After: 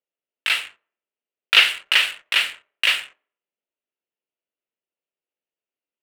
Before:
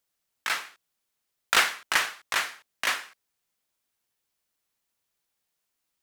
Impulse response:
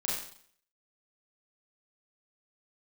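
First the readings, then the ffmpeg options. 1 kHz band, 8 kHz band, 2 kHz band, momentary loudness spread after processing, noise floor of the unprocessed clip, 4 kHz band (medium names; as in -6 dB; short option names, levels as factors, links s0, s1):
-2.0 dB, -1.5 dB, +7.0 dB, 12 LU, -81 dBFS, +12.0 dB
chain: -filter_complex "[0:a]acontrast=37,crystalizer=i=4:c=0,highpass=410,equalizer=f=790:t=q:w=4:g=-8,equalizer=f=1100:t=q:w=4:g=-9,equalizer=f=1600:t=q:w=4:g=-4,equalizer=f=2800:t=q:w=4:g=9,lowpass=f=3800:w=0.5412,lowpass=f=3800:w=1.3066,asplit=2[s0][s1];[1:a]atrim=start_sample=2205,highshelf=f=2000:g=-9.5[s2];[s1][s2]afir=irnorm=-1:irlink=0,volume=0.119[s3];[s0][s3]amix=inputs=2:normalize=0,adynamicsmooth=sensitivity=5.5:basefreq=830,volume=0.631"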